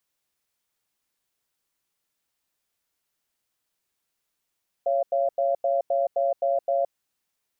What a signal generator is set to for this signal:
tone pair in a cadence 555 Hz, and 685 Hz, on 0.17 s, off 0.09 s, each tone −23 dBFS 2.06 s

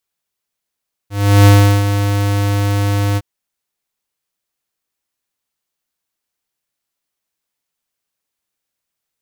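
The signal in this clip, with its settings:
note with an ADSR envelope square 101 Hz, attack 360 ms, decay 367 ms, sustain −9.5 dB, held 2.07 s, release 40 ms −5.5 dBFS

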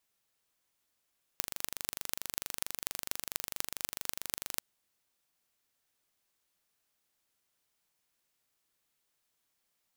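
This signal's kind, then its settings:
impulse train 24.5 per second, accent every 6, −3.5 dBFS 3.21 s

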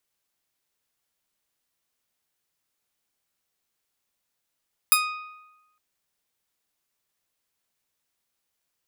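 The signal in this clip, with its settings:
Karplus-Strong string D#6, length 0.86 s, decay 1.06 s, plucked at 0.3, bright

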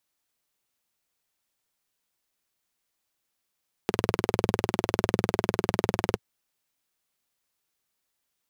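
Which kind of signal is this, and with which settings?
pulse-train model of a single-cylinder engine, steady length 2.30 s, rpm 2,400, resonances 110/190/370 Hz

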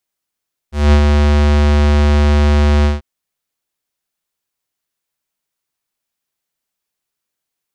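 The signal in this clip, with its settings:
subtractive voice square D2 12 dB per octave, low-pass 5,300 Hz, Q 0.73, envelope 1 octave, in 0.16 s, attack 202 ms, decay 0.08 s, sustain −3.5 dB, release 0.16 s, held 2.13 s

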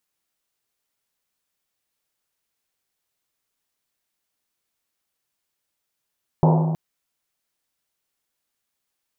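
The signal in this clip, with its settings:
drum after Risset length 0.32 s, pitch 160 Hz, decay 2.17 s, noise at 700 Hz, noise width 520 Hz, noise 25%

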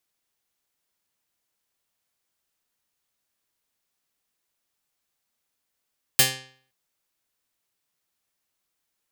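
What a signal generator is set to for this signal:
Karplus-Strong string C3, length 0.52 s, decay 0.53 s, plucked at 0.4, medium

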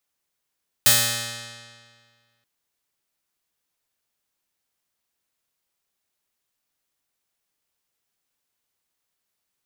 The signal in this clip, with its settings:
Karplus-Strong string A#2, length 1.58 s, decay 1.86 s, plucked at 0.35, bright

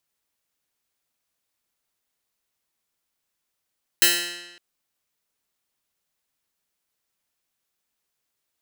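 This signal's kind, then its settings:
Karplus-Strong string F3, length 0.56 s, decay 1.11 s, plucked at 0.15, bright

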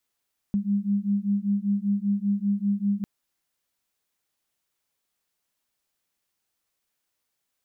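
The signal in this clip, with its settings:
two tones that beat 199 Hz, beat 5.1 Hz, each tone −25 dBFS 2.50 s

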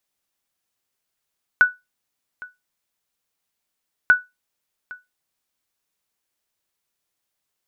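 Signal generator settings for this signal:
ping with an echo 1,480 Hz, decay 0.20 s, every 2.49 s, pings 2, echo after 0.81 s, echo −22.5 dB −5 dBFS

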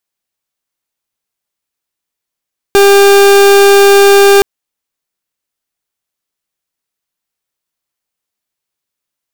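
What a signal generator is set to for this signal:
pulse wave 399 Hz, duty 39% −4.5 dBFS 1.67 s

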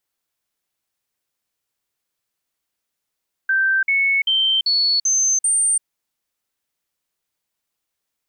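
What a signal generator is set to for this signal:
stepped sweep 1,560 Hz up, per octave 2, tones 6, 0.34 s, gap 0.05 s −14.5 dBFS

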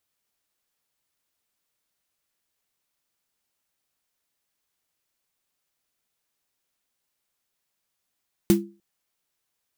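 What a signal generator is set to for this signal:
synth snare length 0.30 s, tones 200 Hz, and 340 Hz, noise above 600 Hz, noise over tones −10.5 dB, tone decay 0.33 s, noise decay 0.16 s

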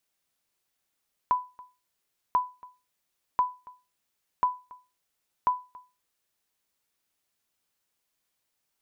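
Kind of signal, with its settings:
ping with an echo 997 Hz, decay 0.29 s, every 1.04 s, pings 5, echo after 0.28 s, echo −23 dB −15.5 dBFS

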